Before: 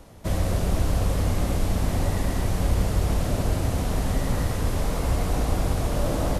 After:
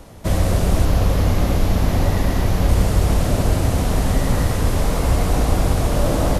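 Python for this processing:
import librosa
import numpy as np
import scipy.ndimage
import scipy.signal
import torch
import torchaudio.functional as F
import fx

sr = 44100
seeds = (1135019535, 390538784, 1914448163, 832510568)

y = fx.peak_eq(x, sr, hz=8500.0, db=-8.0, octaves=0.49, at=(0.85, 2.69))
y = F.gain(torch.from_numpy(y), 6.5).numpy()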